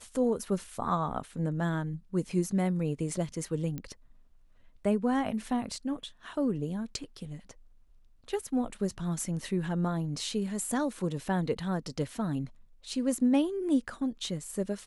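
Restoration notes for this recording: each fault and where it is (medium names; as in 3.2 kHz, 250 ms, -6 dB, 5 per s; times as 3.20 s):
3.78 s: pop -24 dBFS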